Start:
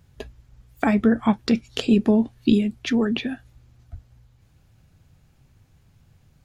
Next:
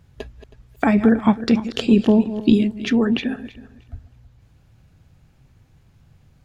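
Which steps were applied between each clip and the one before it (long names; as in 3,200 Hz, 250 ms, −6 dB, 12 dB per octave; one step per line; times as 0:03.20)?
feedback delay that plays each chunk backwards 160 ms, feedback 42%, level −12.5 dB
high-shelf EQ 5,200 Hz −6 dB
level +3 dB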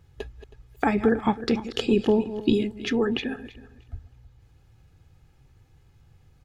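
comb filter 2.4 ms, depth 45%
level −4 dB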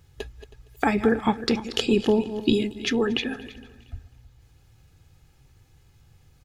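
high-shelf EQ 3,000 Hz +8.5 dB
repeating echo 232 ms, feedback 52%, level −23.5 dB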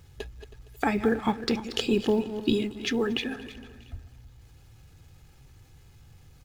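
mu-law and A-law mismatch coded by mu
level −4 dB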